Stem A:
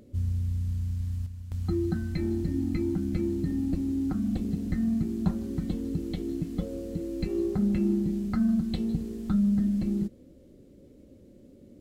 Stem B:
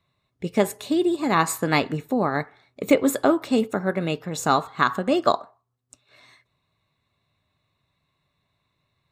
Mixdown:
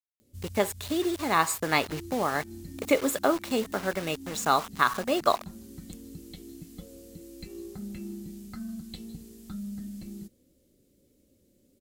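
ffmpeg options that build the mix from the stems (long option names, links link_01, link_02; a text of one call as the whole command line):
ffmpeg -i stem1.wav -i stem2.wav -filter_complex "[0:a]crystalizer=i=6:c=0,adelay=200,volume=-13.5dB[link_01];[1:a]equalizer=frequency=180:width=0.51:gain=-7.5,acrusher=bits=5:mix=0:aa=0.000001,volume=-2dB,asplit=2[link_02][link_03];[link_03]apad=whole_len=529375[link_04];[link_01][link_04]sidechaincompress=threshold=-35dB:ratio=8:attack=35:release=178[link_05];[link_05][link_02]amix=inputs=2:normalize=0" out.wav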